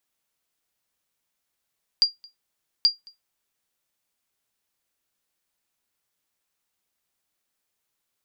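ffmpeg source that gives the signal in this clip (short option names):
-f lavfi -i "aevalsrc='0.335*(sin(2*PI*4780*mod(t,0.83))*exp(-6.91*mod(t,0.83)/0.16)+0.0398*sin(2*PI*4780*max(mod(t,0.83)-0.22,0))*exp(-6.91*max(mod(t,0.83)-0.22,0)/0.16))':d=1.66:s=44100"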